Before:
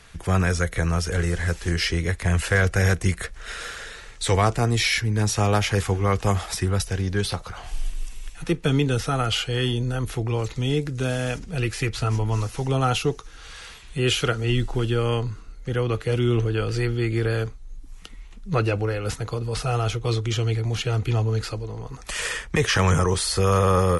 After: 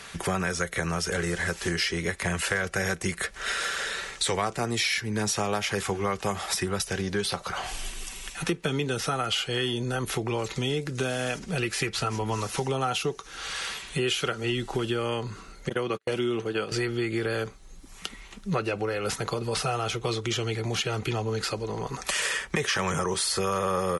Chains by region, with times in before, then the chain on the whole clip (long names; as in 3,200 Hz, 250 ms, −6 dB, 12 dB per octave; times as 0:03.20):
0:15.69–0:16.72: high-pass filter 140 Hz + noise gate −28 dBFS, range −42 dB
whole clip: high-pass filter 280 Hz 6 dB per octave; comb filter 5.2 ms, depth 31%; downward compressor 4 to 1, threshold −35 dBFS; level +8.5 dB